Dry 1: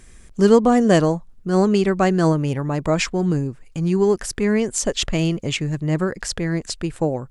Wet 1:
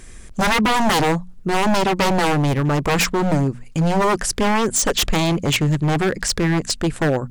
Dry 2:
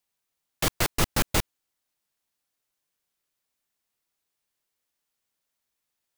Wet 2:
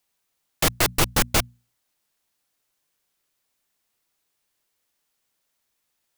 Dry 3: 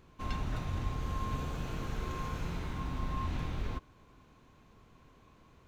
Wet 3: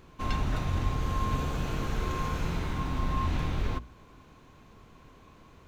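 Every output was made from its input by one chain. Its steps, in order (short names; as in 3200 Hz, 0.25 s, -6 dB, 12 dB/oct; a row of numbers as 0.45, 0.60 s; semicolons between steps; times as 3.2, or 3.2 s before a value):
wavefolder -18.5 dBFS; notches 60/120/180/240 Hz; gain +6.5 dB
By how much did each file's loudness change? +1.0, +4.5, +6.0 LU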